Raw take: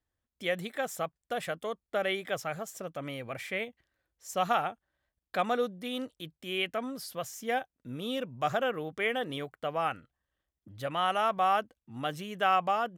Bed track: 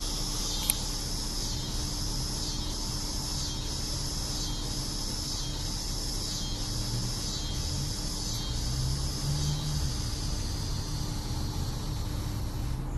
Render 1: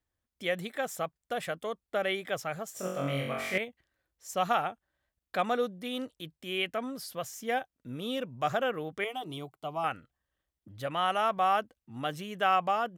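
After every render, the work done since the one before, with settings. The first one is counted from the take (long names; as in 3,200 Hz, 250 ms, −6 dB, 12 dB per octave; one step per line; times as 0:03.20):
0:02.74–0:03.58: flutter between parallel walls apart 3.7 metres, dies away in 0.78 s
0:09.04–0:09.84: phaser with its sweep stopped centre 340 Hz, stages 8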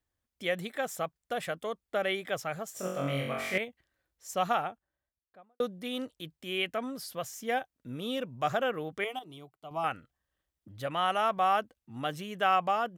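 0:04.32–0:05.60: fade out and dull
0:09.19–0:09.71: clip gain −8.5 dB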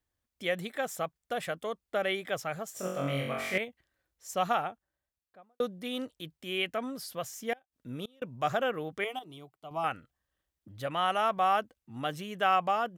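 0:07.53–0:08.22: gate with flip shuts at −28 dBFS, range −29 dB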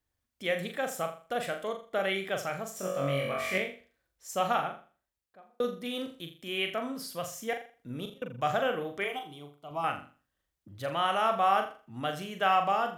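flutter between parallel walls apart 7.1 metres, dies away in 0.38 s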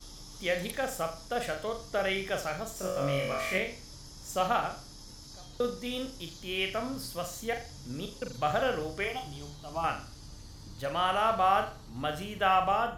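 mix in bed track −15.5 dB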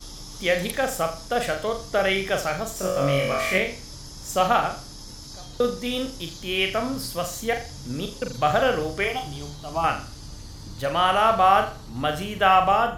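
level +8 dB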